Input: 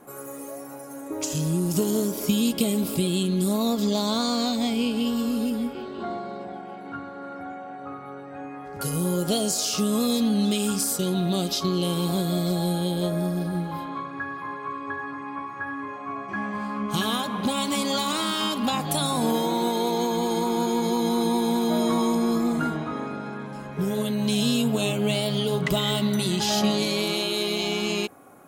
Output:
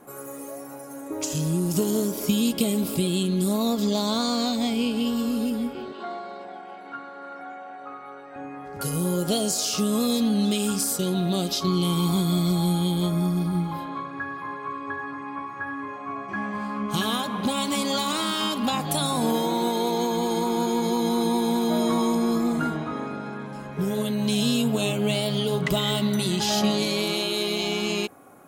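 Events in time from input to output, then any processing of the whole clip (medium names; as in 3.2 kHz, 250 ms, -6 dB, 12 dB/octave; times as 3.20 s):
5.92–8.36 s: frequency weighting A
11.67–13.73 s: comb 0.9 ms, depth 61%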